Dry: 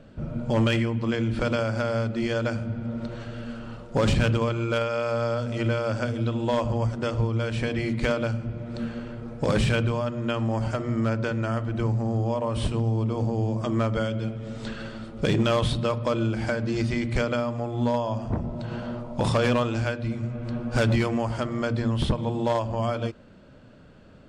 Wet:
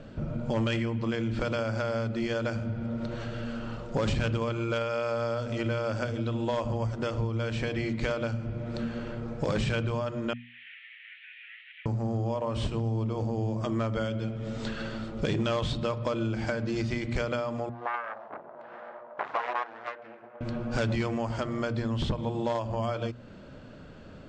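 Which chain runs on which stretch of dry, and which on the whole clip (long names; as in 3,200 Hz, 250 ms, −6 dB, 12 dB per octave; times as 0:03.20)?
0:10.33–0:11.86: linear delta modulator 16 kbit/s, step −42.5 dBFS + Chebyshev high-pass filter 1,800 Hz, order 6
0:17.69–0:20.41: phase distortion by the signal itself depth 0.66 ms + flat-topped band-pass 1,000 Hz, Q 0.75 + expander for the loud parts, over −37 dBFS
whole clip: Butterworth low-pass 7,900 Hz 48 dB per octave; mains-hum notches 60/120/180/240 Hz; downward compressor 2 to 1, threshold −37 dBFS; level +4 dB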